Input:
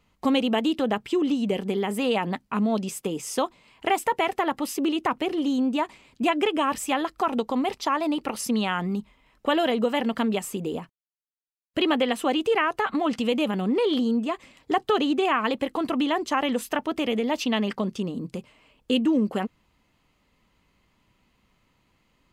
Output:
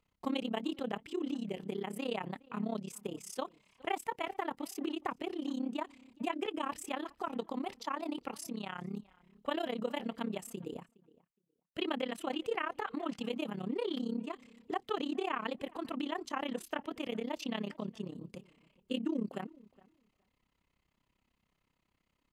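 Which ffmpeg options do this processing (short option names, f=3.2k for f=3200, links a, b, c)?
-filter_complex "[0:a]asettb=1/sr,asplit=3[a][b][c];[a]atrim=end=8.404[d];[b]atrim=start=8.4:end=8.93,asetpts=PTS-STARTPTS,afade=t=in:d=0.004:c=qsin,afade=t=out:st=0.526:d=0.004:c=qsin,acompressor=threshold=-24dB:ratio=6[e];[c]atrim=start=8.926[f];[d][e]acrossfade=d=0.004:c1=hsin:c2=qsin[g];[g][f]acrossfade=d=0.004:c1=qsin:c2=hsin,tremolo=f=33:d=0.919,asplit=2[h][i];[i]adelay=415,lowpass=f=2.6k:p=1,volume=-23dB,asplit=2[j][k];[k]adelay=415,lowpass=f=2.6k:p=1,volume=0.15[l];[h][j][l]amix=inputs=3:normalize=0,volume=-9dB"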